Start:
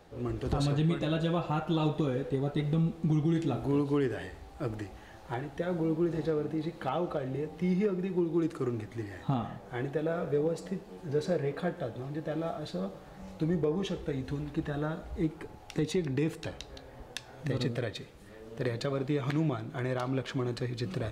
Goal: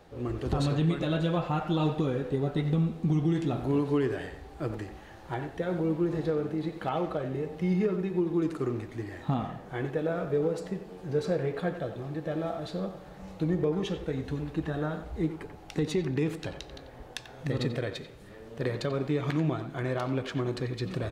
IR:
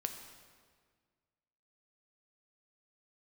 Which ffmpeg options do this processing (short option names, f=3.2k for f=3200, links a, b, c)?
-filter_complex "[0:a]asplit=2[a][b];[b]adelay=90,highpass=300,lowpass=3.4k,asoftclip=type=hard:threshold=-28.5dB,volume=-9dB[c];[a][c]amix=inputs=2:normalize=0,asplit=2[d][e];[1:a]atrim=start_sample=2205,asetrate=29106,aresample=44100,lowpass=5.5k[f];[e][f]afir=irnorm=-1:irlink=0,volume=-16dB[g];[d][g]amix=inputs=2:normalize=0"